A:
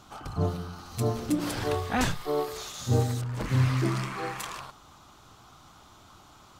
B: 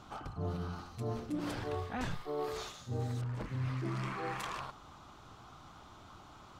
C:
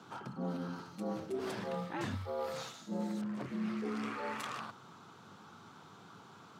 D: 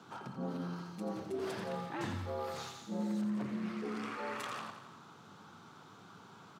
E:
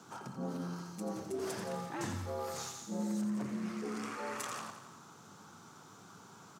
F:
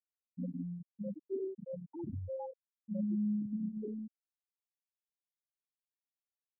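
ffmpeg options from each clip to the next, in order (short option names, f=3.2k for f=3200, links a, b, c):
-af "lowpass=f=2.9k:p=1,areverse,acompressor=threshold=-35dB:ratio=5,areverse"
-af "afreqshift=88,volume=-1dB"
-af "aecho=1:1:86|172|258|344|430|516|602:0.376|0.214|0.122|0.0696|0.0397|0.0226|0.0129,volume=-1dB"
-af "highshelf=f=4.9k:t=q:w=1.5:g=8"
-af "acrusher=bits=8:mode=log:mix=0:aa=0.000001,afftfilt=real='re*gte(hypot(re,im),0.0794)':imag='im*gte(hypot(re,im),0.0794)':win_size=1024:overlap=0.75,volume=2.5dB"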